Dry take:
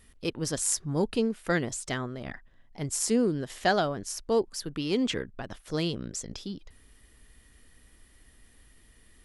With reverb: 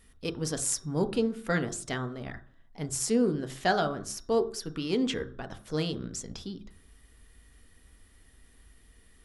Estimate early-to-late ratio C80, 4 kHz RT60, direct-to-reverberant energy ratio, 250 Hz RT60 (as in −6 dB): 18.5 dB, 0.40 s, 7.0 dB, 0.50 s